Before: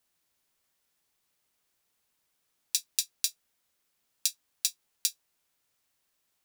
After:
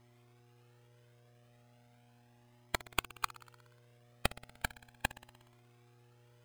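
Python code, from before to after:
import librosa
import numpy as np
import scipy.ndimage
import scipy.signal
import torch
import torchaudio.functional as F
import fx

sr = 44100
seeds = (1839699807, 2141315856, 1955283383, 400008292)

p1 = fx.spec_dropout(x, sr, seeds[0], share_pct=37)
p2 = fx.gate_flip(p1, sr, shuts_db=-24.0, range_db=-36)
p3 = fx.dmg_buzz(p2, sr, base_hz=120.0, harmonics=7, level_db=-64.0, tilt_db=-7, odd_only=False)
p4 = fx.low_shelf(p3, sr, hz=330.0, db=-8.0)
p5 = p4 + fx.echo_thinned(p4, sr, ms=60, feedback_pct=70, hz=420.0, wet_db=-18, dry=0)
p6 = fx.sample_hold(p5, sr, seeds[1], rate_hz=5700.0, jitter_pct=0)
p7 = fx.comb_cascade(p6, sr, direction='rising', hz=0.37)
y = F.gain(torch.from_numpy(p7), 9.5).numpy()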